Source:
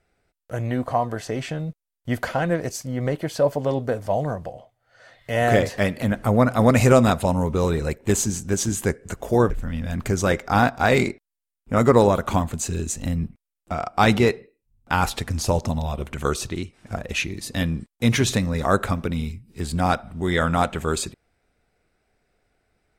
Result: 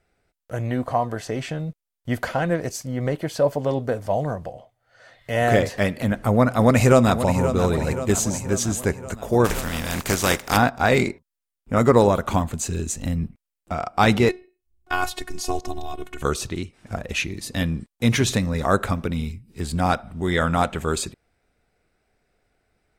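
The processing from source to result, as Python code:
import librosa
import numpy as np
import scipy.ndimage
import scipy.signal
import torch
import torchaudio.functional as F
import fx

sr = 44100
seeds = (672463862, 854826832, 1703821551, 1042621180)

y = fx.echo_throw(x, sr, start_s=6.56, length_s=0.95, ms=530, feedback_pct=60, wet_db=-10.0)
y = fx.spec_flatten(y, sr, power=0.51, at=(9.44, 10.56), fade=0.02)
y = fx.robotise(y, sr, hz=365.0, at=(14.29, 16.22))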